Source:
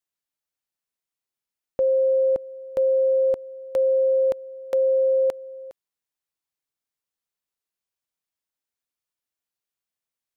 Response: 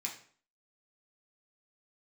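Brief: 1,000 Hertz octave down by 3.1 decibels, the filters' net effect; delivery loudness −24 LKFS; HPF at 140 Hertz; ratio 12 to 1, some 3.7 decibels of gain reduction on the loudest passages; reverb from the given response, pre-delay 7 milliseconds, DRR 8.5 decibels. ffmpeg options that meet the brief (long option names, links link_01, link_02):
-filter_complex "[0:a]highpass=140,equalizer=frequency=1000:width_type=o:gain=-4.5,acompressor=threshold=-22dB:ratio=12,asplit=2[link_01][link_02];[1:a]atrim=start_sample=2205,adelay=7[link_03];[link_02][link_03]afir=irnorm=-1:irlink=0,volume=-9dB[link_04];[link_01][link_04]amix=inputs=2:normalize=0,volume=4dB"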